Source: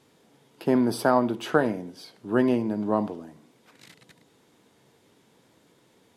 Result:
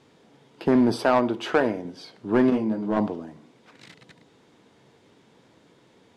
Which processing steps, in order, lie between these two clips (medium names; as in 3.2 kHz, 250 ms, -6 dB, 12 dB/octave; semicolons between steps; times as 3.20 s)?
0.96–1.85 s: peaking EQ 160 Hz -8.5 dB 1.1 oct; in parallel at -4 dB: wavefolder -18 dBFS; on the sum: short-mantissa float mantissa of 6-bit; distance through air 72 m; 2.50–2.97 s: detune thickener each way 19 cents